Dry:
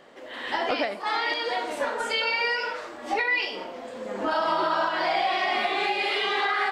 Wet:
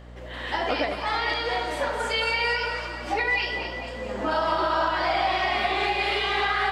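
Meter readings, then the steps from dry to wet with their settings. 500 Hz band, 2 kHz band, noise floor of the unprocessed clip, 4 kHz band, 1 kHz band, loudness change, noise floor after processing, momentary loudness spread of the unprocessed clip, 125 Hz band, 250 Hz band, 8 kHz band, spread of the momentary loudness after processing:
+1.0 dB, +1.0 dB, -40 dBFS, +0.5 dB, +1.0 dB, +0.5 dB, -36 dBFS, 11 LU, +15.0 dB, +1.0 dB, +1.0 dB, 7 LU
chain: hum 60 Hz, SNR 18 dB; split-band echo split 720 Hz, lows 84 ms, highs 0.222 s, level -8 dB

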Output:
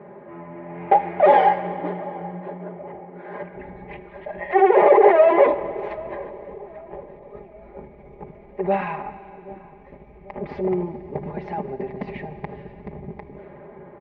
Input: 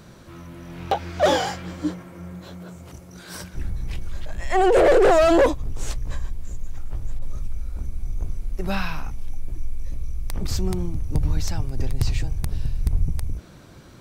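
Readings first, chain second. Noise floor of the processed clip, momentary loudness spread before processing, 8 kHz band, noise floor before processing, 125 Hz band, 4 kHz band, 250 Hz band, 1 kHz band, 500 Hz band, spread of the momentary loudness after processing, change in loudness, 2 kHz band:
-46 dBFS, 22 LU, under -35 dB, -45 dBFS, -9.5 dB, under -10 dB, -1.0 dB, +6.5 dB, +2.5 dB, 24 LU, +4.5 dB, 0.0 dB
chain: one-sided fold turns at -18 dBFS; low-pass opened by the level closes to 1700 Hz, open at -15 dBFS; comb 4.9 ms, depth 79%; in parallel at -1 dB: negative-ratio compressor -21 dBFS; on the sum: speaker cabinet 190–2200 Hz, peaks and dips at 230 Hz -4 dB, 390 Hz +8 dB, 560 Hz +8 dB, 840 Hz +10 dB, 1400 Hz -9 dB, 2000 Hz +7 dB; on a send: darkening echo 0.782 s, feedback 58%, low-pass 840 Hz, level -18 dB; on the sum: Schroeder reverb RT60 2.7 s, combs from 26 ms, DRR 13 dB; gain -6 dB

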